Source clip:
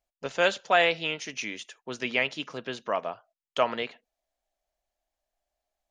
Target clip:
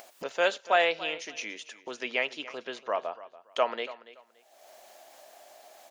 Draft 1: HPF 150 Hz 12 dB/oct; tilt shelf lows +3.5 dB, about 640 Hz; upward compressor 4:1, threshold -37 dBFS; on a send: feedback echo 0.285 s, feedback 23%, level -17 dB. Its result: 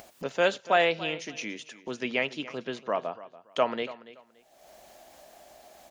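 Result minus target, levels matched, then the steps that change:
125 Hz band +14.5 dB
change: HPF 460 Hz 12 dB/oct

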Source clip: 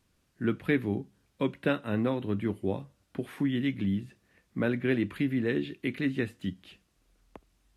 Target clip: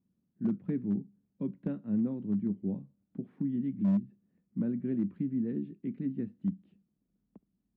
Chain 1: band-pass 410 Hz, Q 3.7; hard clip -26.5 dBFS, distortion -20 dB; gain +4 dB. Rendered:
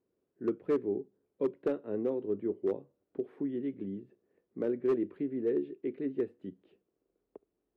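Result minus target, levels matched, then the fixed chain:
500 Hz band +13.5 dB
band-pass 200 Hz, Q 3.7; hard clip -26.5 dBFS, distortion -25 dB; gain +4 dB

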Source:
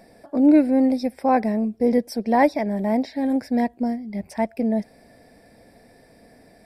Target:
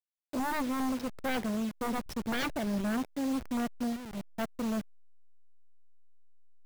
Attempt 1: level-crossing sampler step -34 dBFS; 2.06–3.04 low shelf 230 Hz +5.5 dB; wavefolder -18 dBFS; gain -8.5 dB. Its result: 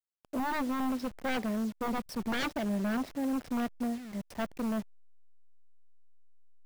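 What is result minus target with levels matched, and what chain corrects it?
level-crossing sampler: distortion -5 dB
level-crossing sampler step -28 dBFS; 2.06–3.04 low shelf 230 Hz +5.5 dB; wavefolder -18 dBFS; gain -8.5 dB

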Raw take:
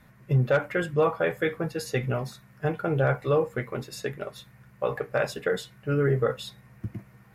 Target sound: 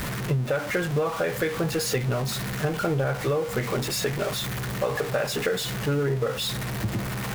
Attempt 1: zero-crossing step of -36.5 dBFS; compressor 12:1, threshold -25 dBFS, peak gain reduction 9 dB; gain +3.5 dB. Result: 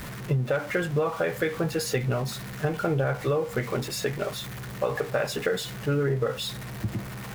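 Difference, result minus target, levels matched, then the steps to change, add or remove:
zero-crossing step: distortion -7 dB
change: zero-crossing step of -28.5 dBFS

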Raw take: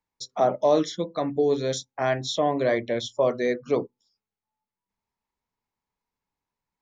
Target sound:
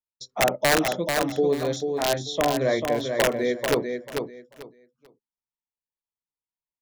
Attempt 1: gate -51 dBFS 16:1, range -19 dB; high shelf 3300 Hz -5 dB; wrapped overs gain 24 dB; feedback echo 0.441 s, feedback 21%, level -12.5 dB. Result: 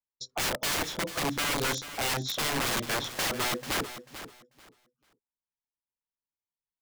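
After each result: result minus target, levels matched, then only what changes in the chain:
wrapped overs: distortion +25 dB; echo-to-direct -7 dB
change: wrapped overs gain 13 dB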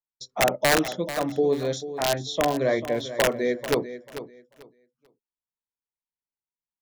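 echo-to-direct -7 dB
change: feedback echo 0.441 s, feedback 21%, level -5.5 dB

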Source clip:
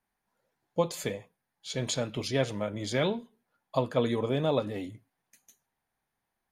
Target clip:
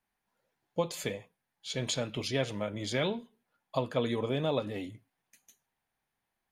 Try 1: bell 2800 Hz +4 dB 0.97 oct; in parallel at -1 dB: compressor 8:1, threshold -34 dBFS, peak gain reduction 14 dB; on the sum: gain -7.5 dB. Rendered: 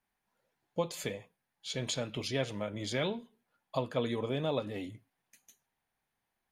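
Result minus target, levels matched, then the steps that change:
compressor: peak gain reduction +8 dB
change: compressor 8:1, threshold -25 dBFS, peak gain reduction 6 dB

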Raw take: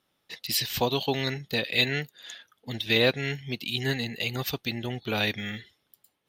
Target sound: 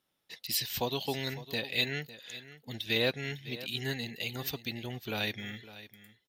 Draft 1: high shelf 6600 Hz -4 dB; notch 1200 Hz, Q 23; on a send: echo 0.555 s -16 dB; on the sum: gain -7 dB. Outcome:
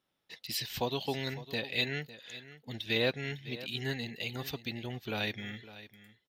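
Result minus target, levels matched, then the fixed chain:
8000 Hz band -4.0 dB
high shelf 6600 Hz +5.5 dB; notch 1200 Hz, Q 23; on a send: echo 0.555 s -16 dB; on the sum: gain -7 dB

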